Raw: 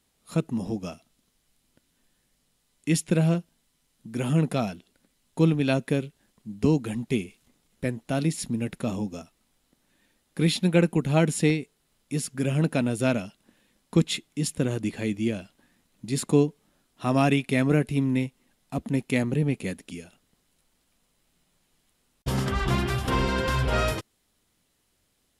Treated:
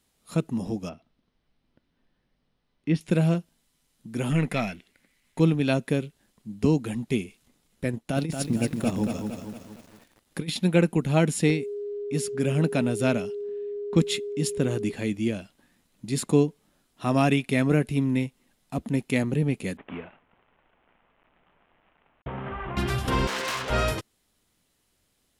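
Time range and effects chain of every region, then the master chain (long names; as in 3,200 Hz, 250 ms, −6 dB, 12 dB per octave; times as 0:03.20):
0:00.89–0:03.01: Savitzky-Golay smoothing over 15 samples + high-shelf EQ 2,700 Hz −11.5 dB
0:04.31–0:05.40: gain on one half-wave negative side −3 dB + parametric band 2,100 Hz +14 dB 0.69 octaves
0:07.93–0:10.56: transient designer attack +5 dB, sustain −10 dB + compressor whose output falls as the input rises −24 dBFS, ratio −0.5 + feedback echo at a low word length 230 ms, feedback 55%, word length 8 bits, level −5.5 dB
0:11.47–0:14.91: low-pass that shuts in the quiet parts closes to 2,800 Hz, open at −23.5 dBFS + steady tone 410 Hz −30 dBFS
0:19.77–0:22.77: variable-slope delta modulation 16 kbit/s + parametric band 830 Hz +9 dB 2.2 octaves + downward compressor 12 to 1, threshold −30 dBFS
0:23.27–0:23.70: phase distortion by the signal itself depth 0.46 ms + meter weighting curve A
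whole clip: no processing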